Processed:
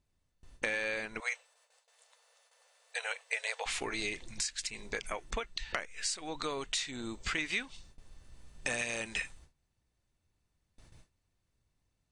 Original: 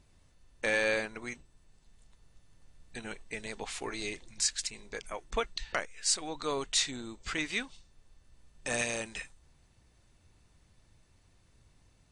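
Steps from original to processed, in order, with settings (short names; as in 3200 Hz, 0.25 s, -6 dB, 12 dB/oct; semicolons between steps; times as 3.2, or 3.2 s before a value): gate with hold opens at -51 dBFS; 1.2–3.66 brick-wall FIR high-pass 450 Hz; compressor 8:1, threshold -40 dBFS, peak gain reduction 16 dB; dynamic EQ 2300 Hz, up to +5 dB, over -56 dBFS, Q 1.1; gain +6 dB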